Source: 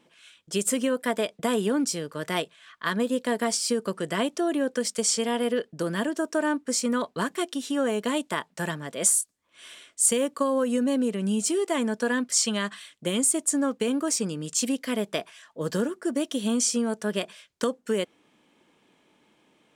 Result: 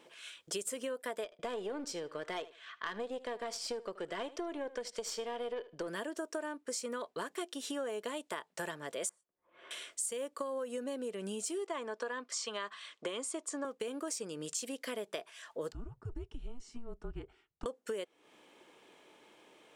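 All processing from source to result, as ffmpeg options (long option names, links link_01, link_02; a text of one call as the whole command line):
ffmpeg -i in.wav -filter_complex "[0:a]asettb=1/sr,asplit=3[link_01][link_02][link_03];[link_01]atrim=end=1.244[link_04];[link_02]atrim=start=1.24:end=5.88,asetpts=PTS-STARTPTS,afade=type=in:duration=0.004:curve=qsin,afade=type=out:start_time=4.636:duration=0.004:curve=qsin,lowpass=5200,aeval=exprs='(tanh(7.08*val(0)+0.55)-tanh(0.55))/7.08':channel_layout=same,aecho=1:1:77|154:0.112|0.0168,atrim=end_sample=204624[link_05];[link_03]atrim=start=5.876[link_06];[link_04][link_05]acrossfade=duration=0.004:curve1=hsin:curve2=qsin[link_07];[link_07][link_06]acrossfade=duration=0.004:curve1=qsin:curve2=hsin,asettb=1/sr,asplit=3[link_08][link_09][link_10];[link_08]atrim=end=9.094[link_11];[link_09]atrim=start=9.09:end=9.71,asetpts=PTS-STARTPTS,afade=type=in:duration=0.004:curve=qsin,afade=type=out:start_time=0.616:duration=0.004:curve=qsin,lowpass=1100,aecho=1:1:5.6:0.31,atrim=end_sample=27342[link_12];[link_10]atrim=start=9.706[link_13];[link_11][link_12]acrossfade=duration=0.004:curve1=hsin:curve2=qsin[link_14];[link_14][link_13]acrossfade=duration=0.004:curve1=qsin:curve2=hsin,asettb=1/sr,asplit=3[link_15][link_16][link_17];[link_15]atrim=end=11.674[link_18];[link_16]atrim=start=11.67:end=13.65,asetpts=PTS-STARTPTS,afade=type=in:duration=0.004:curve=qsin,afade=type=out:start_time=1.976:duration=0.004:curve=qsin,highpass=260,lowpass=5500,equalizer=frequency=1100:width=3.5:gain=7.5[link_19];[link_17]atrim=start=13.646[link_20];[link_18][link_19]acrossfade=duration=0.004:curve1=hsin:curve2=qsin[link_21];[link_21][link_20]acrossfade=duration=0.004:curve1=qsin:curve2=hsin,asettb=1/sr,asplit=3[link_22][link_23][link_24];[link_22]atrim=end=15.724[link_25];[link_23]atrim=start=15.72:end=17.66,asetpts=PTS-STARTPTS,afade=type=in:duration=0.004:curve=qsin,afade=type=out:start_time=1.936:duration=0.004:curve=qsin,bandpass=frequency=150:width_type=q:width=0.88,afreqshift=-240[link_26];[link_24]atrim=start=17.656[link_27];[link_25][link_26]acrossfade=duration=0.004:curve1=hsin:curve2=qsin[link_28];[link_28][link_27]acrossfade=duration=0.004:curve1=qsin:curve2=hsin,lowshelf=frequency=300:width_type=q:width=1.5:gain=-8,acompressor=threshold=-41dB:ratio=5,volume=3dB" out.wav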